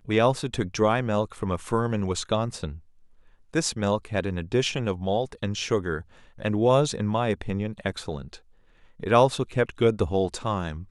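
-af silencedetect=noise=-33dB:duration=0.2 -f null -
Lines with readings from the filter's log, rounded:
silence_start: 2.75
silence_end: 3.54 | silence_duration: 0.78
silence_start: 6.01
silence_end: 6.40 | silence_duration: 0.39
silence_start: 8.35
silence_end: 9.00 | silence_duration: 0.65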